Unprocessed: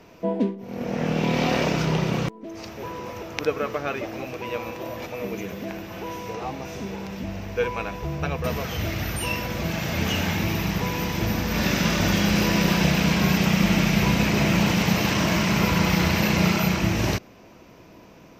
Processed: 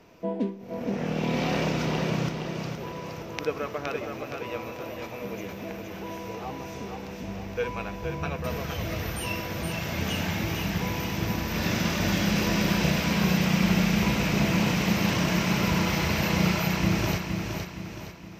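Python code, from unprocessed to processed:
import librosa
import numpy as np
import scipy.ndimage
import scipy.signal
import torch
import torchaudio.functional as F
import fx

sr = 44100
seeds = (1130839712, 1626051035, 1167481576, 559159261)

y = fx.echo_feedback(x, sr, ms=467, feedback_pct=44, wet_db=-5.5)
y = y * librosa.db_to_amplitude(-5.0)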